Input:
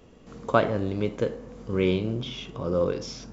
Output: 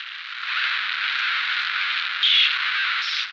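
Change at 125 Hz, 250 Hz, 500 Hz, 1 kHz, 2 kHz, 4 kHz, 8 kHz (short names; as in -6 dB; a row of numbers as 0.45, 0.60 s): under -40 dB, under -35 dB, under -35 dB, +3.5 dB, +17.0 dB, +20.5 dB, n/a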